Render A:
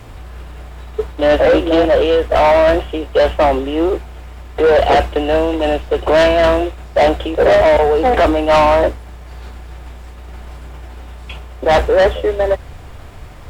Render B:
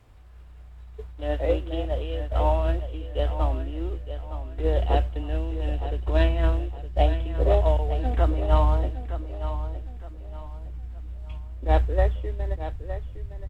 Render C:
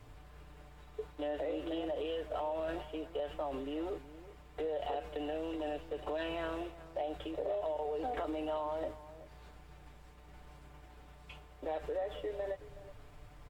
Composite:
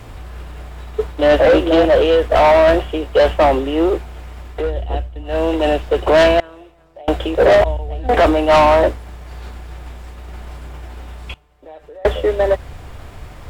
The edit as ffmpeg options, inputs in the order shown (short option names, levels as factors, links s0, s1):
-filter_complex "[1:a]asplit=2[s0][s1];[2:a]asplit=2[s2][s3];[0:a]asplit=5[s4][s5][s6][s7][s8];[s4]atrim=end=4.72[s9];[s0]atrim=start=4.48:end=5.48[s10];[s5]atrim=start=5.24:end=6.402[s11];[s2]atrim=start=6.398:end=7.082[s12];[s6]atrim=start=7.078:end=7.642[s13];[s1]atrim=start=7.638:end=8.092[s14];[s7]atrim=start=8.088:end=11.342[s15];[s3]atrim=start=11.338:end=12.052[s16];[s8]atrim=start=12.048[s17];[s9][s10]acrossfade=d=0.24:c1=tri:c2=tri[s18];[s18][s11]acrossfade=d=0.24:c1=tri:c2=tri[s19];[s19][s12]acrossfade=d=0.004:c1=hsin:c2=hsin[s20];[s20][s13]acrossfade=d=0.004:c1=hsin:c2=hsin[s21];[s21][s14]acrossfade=d=0.004:c1=hsin:c2=hsin[s22];[s22][s15]acrossfade=d=0.004:c1=hsin:c2=hsin[s23];[s23][s16]acrossfade=d=0.004:c1=hsin:c2=hsin[s24];[s24][s17]acrossfade=d=0.004:c1=hsin:c2=hsin"